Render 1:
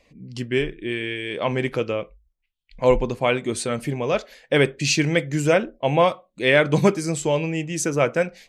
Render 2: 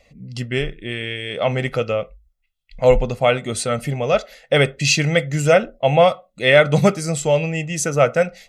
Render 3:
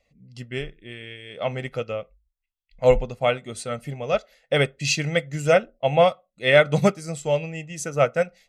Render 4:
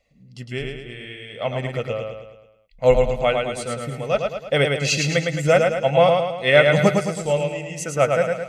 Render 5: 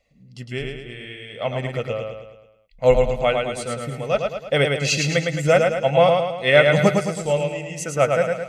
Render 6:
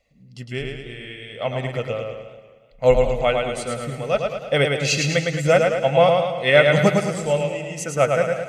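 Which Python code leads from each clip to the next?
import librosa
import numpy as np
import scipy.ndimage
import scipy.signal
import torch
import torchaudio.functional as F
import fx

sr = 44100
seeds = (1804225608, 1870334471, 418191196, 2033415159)

y1 = x + 0.6 * np.pad(x, (int(1.5 * sr / 1000.0), 0))[:len(x)]
y1 = y1 * librosa.db_to_amplitude(2.5)
y2 = fx.upward_expand(y1, sr, threshold_db=-31.0, expansion=1.5)
y2 = y2 * librosa.db_to_amplitude(-2.5)
y3 = fx.echo_feedback(y2, sr, ms=108, feedback_pct=50, wet_db=-4.0)
y3 = y3 * librosa.db_to_amplitude(1.0)
y4 = y3
y5 = fx.echo_warbled(y4, sr, ms=183, feedback_pct=47, rate_hz=2.8, cents=130, wet_db=-15.0)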